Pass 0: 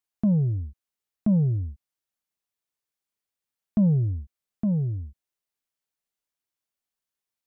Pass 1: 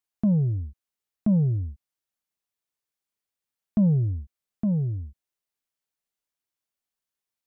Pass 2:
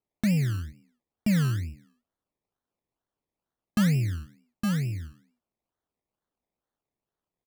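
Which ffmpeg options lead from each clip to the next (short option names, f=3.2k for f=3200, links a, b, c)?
-af anull
-filter_complex "[0:a]asplit=4[a][b][c][d];[b]adelay=90,afreqshift=57,volume=-20.5dB[e];[c]adelay=180,afreqshift=114,volume=-28.7dB[f];[d]adelay=270,afreqshift=171,volume=-36.9dB[g];[a][e][f][g]amix=inputs=4:normalize=0,acrusher=samples=24:mix=1:aa=0.000001:lfo=1:lforange=14.4:lforate=2.2,volume=-2.5dB"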